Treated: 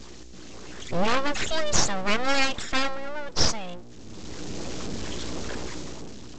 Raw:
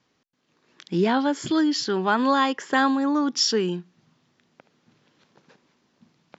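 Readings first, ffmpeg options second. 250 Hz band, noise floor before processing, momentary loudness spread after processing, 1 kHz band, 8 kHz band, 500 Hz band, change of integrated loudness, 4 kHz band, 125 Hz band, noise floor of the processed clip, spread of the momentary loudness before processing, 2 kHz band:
-10.0 dB, -71 dBFS, 19 LU, -5.0 dB, n/a, -4.0 dB, -5.0 dB, 0.0 dB, +0.5 dB, -42 dBFS, 5 LU, 0.0 dB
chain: -af "aeval=exprs='val(0)+0.5*0.0376*sgn(val(0))':c=same,afftdn=nr=18:nf=-29,crystalizer=i=5.5:c=0,aeval=exprs='val(0)+0.0141*(sin(2*PI*60*n/s)+sin(2*PI*2*60*n/s)/2+sin(2*PI*3*60*n/s)/3+sin(2*PI*4*60*n/s)/4+sin(2*PI*5*60*n/s)/5)':c=same,aresample=16000,aeval=exprs='abs(val(0))':c=same,aresample=44100,dynaudnorm=f=110:g=13:m=11dB,volume=-5dB"

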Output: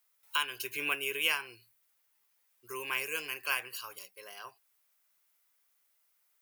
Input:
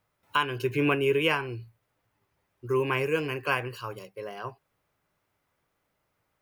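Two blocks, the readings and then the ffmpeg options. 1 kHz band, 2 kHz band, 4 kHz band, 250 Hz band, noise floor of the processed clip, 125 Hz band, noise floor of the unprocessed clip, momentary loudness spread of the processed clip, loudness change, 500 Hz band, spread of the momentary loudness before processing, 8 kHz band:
-9.0 dB, -3.0 dB, 0.0 dB, -20.0 dB, -74 dBFS, -27.0 dB, -78 dBFS, 18 LU, -5.5 dB, -16.5 dB, 16 LU, +8.5 dB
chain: -af "aderivative,volume=7.5dB"

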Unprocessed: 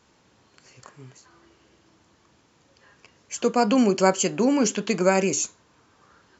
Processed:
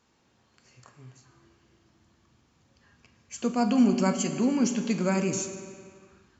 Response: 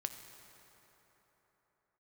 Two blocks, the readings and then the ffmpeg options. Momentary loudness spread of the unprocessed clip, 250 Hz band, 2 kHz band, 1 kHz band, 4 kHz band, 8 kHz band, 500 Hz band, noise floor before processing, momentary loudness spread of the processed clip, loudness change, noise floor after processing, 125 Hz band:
7 LU, -1.0 dB, -7.5 dB, -7.5 dB, -6.5 dB, n/a, -8.5 dB, -62 dBFS, 16 LU, -4.0 dB, -67 dBFS, -0.5 dB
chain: -filter_complex "[0:a]asubboost=boost=3.5:cutoff=230[a];[1:a]atrim=start_sample=2205,asetrate=83790,aresample=44100[b];[a][b]afir=irnorm=-1:irlink=0"

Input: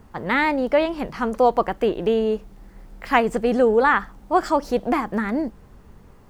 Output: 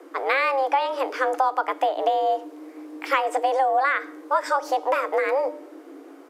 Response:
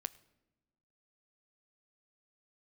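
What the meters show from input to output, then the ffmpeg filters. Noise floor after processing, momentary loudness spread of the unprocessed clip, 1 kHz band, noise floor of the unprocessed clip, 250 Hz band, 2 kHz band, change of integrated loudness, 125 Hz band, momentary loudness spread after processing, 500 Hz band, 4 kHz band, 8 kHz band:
-46 dBFS, 9 LU, +1.5 dB, -49 dBFS, -14.5 dB, -1.5 dB, -2.0 dB, under -40 dB, 12 LU, -3.5 dB, -0.5 dB, n/a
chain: -filter_complex "[0:a]acompressor=threshold=-21dB:ratio=6,bandreject=f=326.9:t=h:w=4,bandreject=f=653.8:t=h:w=4,bandreject=f=980.7:t=h:w=4,bandreject=f=1.3076k:t=h:w=4,bandreject=f=1.6345k:t=h:w=4,bandreject=f=1.9614k:t=h:w=4,bandreject=f=2.2883k:t=h:w=4,bandreject=f=2.6152k:t=h:w=4,bandreject=f=2.9421k:t=h:w=4,bandreject=f=3.269k:t=h:w=4,bandreject=f=3.5959k:t=h:w=4,bandreject=f=3.9228k:t=h:w=4,bandreject=f=4.2497k:t=h:w=4,bandreject=f=4.5766k:t=h:w=4,bandreject=f=4.9035k:t=h:w=4,bandreject=f=5.2304k:t=h:w=4,bandreject=f=5.5573k:t=h:w=4,bandreject=f=5.8842k:t=h:w=4,bandreject=f=6.2111k:t=h:w=4,bandreject=f=6.538k:t=h:w=4,bandreject=f=6.8649k:t=h:w=4,bandreject=f=7.1918k:t=h:w=4,bandreject=f=7.5187k:t=h:w=4,bandreject=f=7.8456k:t=h:w=4,bandreject=f=8.1725k:t=h:w=4,bandreject=f=8.4994k:t=h:w=4,bandreject=f=8.8263k:t=h:w=4,bandreject=f=9.1532k:t=h:w=4,bandreject=f=9.4801k:t=h:w=4,bandreject=f=9.807k:t=h:w=4,afreqshift=270,asplit=2[a][b];[1:a]atrim=start_sample=2205[c];[b][c]afir=irnorm=-1:irlink=0,volume=6.5dB[d];[a][d]amix=inputs=2:normalize=0,aresample=32000,aresample=44100,volume=-5.5dB"

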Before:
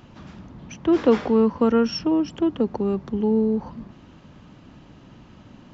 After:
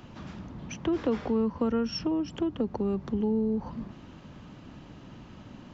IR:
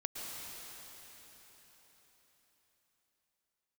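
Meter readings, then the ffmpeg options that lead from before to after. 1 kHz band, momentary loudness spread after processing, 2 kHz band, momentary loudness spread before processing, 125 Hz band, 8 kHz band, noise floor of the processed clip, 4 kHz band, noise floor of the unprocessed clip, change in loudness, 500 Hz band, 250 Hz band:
-8.5 dB, 20 LU, -7.0 dB, 10 LU, -4.0 dB, n/a, -49 dBFS, -5.5 dB, -49 dBFS, -8.0 dB, -9.0 dB, -7.0 dB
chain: -filter_complex "[0:a]acrossover=split=140[a][b];[b]acompressor=threshold=-29dB:ratio=3[c];[a][c]amix=inputs=2:normalize=0"

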